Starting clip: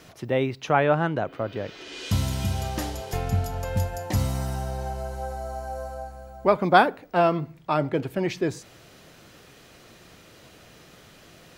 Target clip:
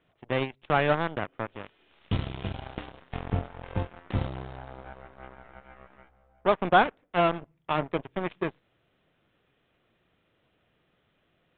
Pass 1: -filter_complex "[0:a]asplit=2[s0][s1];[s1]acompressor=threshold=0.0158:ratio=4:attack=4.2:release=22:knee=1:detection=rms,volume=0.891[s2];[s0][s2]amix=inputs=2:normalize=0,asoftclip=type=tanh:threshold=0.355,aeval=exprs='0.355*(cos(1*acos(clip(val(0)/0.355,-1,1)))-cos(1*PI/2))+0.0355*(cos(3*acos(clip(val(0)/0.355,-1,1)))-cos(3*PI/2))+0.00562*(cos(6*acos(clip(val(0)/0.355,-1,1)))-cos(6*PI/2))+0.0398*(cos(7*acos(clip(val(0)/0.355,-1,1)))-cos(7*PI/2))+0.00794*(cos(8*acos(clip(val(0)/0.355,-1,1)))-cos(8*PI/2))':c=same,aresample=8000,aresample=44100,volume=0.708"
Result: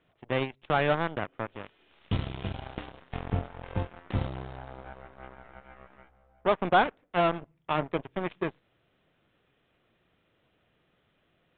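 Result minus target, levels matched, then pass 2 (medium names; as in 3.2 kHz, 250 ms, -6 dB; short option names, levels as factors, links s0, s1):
saturation: distortion +9 dB
-filter_complex "[0:a]asplit=2[s0][s1];[s1]acompressor=threshold=0.0158:ratio=4:attack=4.2:release=22:knee=1:detection=rms,volume=0.891[s2];[s0][s2]amix=inputs=2:normalize=0,asoftclip=type=tanh:threshold=0.708,aeval=exprs='0.355*(cos(1*acos(clip(val(0)/0.355,-1,1)))-cos(1*PI/2))+0.0355*(cos(3*acos(clip(val(0)/0.355,-1,1)))-cos(3*PI/2))+0.00562*(cos(6*acos(clip(val(0)/0.355,-1,1)))-cos(6*PI/2))+0.0398*(cos(7*acos(clip(val(0)/0.355,-1,1)))-cos(7*PI/2))+0.00794*(cos(8*acos(clip(val(0)/0.355,-1,1)))-cos(8*PI/2))':c=same,aresample=8000,aresample=44100,volume=0.708"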